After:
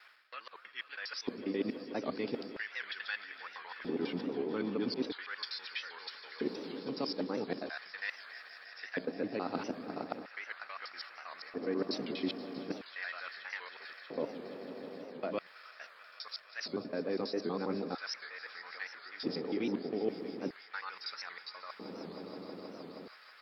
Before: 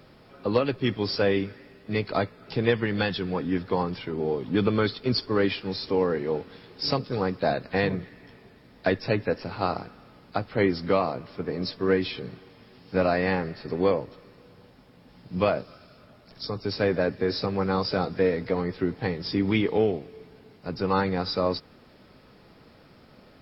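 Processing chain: slices played last to first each 81 ms, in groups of 4; reverse; compression 6:1, threshold -33 dBFS, peak gain reduction 15.5 dB; reverse; echo with a slow build-up 159 ms, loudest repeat 5, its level -17 dB; LFO high-pass square 0.39 Hz 260–1600 Hz; warped record 78 rpm, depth 160 cents; trim -2.5 dB

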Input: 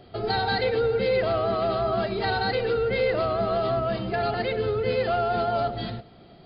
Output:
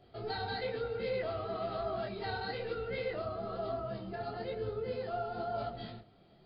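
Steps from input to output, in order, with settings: 3.19–5.58 s: peaking EQ 2.4 kHz -6.5 dB 1.4 oct; detune thickener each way 37 cents; trim -8.5 dB

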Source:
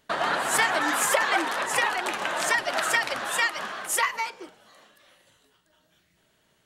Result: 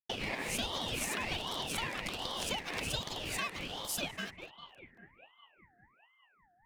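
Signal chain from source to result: elliptic band-stop 140–980 Hz; compression 2.5:1, threshold -37 dBFS, peak gain reduction 11.5 dB; hysteresis with a dead band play -41.5 dBFS; band-passed feedback delay 200 ms, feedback 81%, band-pass 750 Hz, level -8.5 dB; ring modulator with a swept carrier 1.4 kHz, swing 50%, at 1.3 Hz; trim +2 dB

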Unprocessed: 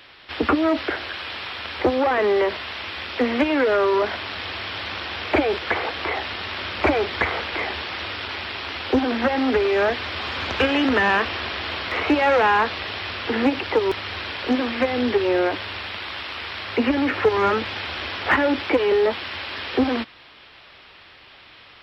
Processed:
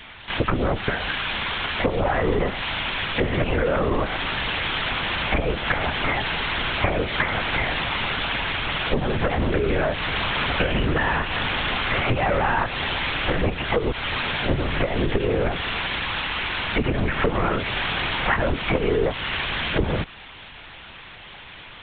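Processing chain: compression, threshold -25 dBFS, peak gain reduction 11.5 dB; LPC vocoder at 8 kHz whisper; trim +6 dB

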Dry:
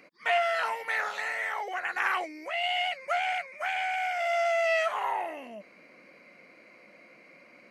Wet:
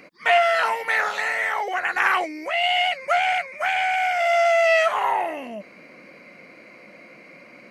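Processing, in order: bass shelf 180 Hz +7 dB; trim +8 dB

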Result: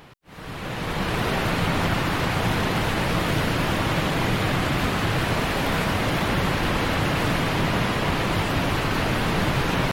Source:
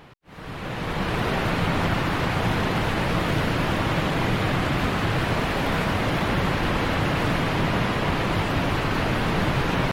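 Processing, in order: treble shelf 4.9 kHz +7 dB

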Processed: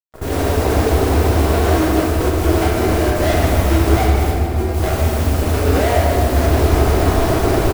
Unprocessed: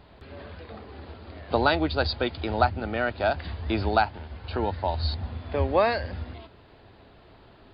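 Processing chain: 3.15–3.75 s: one-bit comparator; recorder AGC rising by 62 dB/s; Chebyshev low-pass 700 Hz, order 4; comb 2.7 ms, depth 49%; fuzz box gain 35 dB, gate -38 dBFS; 4.30–4.74 s: inharmonic resonator 120 Hz, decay 0.21 s, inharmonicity 0.008; modulation noise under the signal 14 dB; delay 148 ms -9 dB; reverberation RT60 2.6 s, pre-delay 6 ms, DRR -4 dB; trim -7 dB

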